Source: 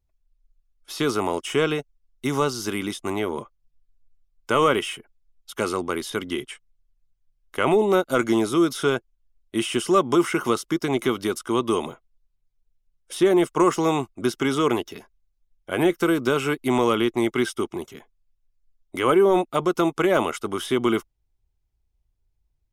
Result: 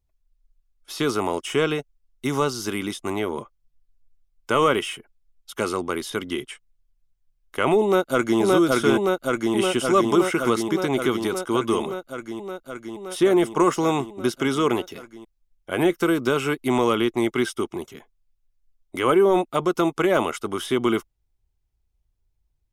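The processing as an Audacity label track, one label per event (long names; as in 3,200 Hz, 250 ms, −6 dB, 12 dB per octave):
7.830000	8.400000	delay throw 570 ms, feedback 80%, level −0.5 dB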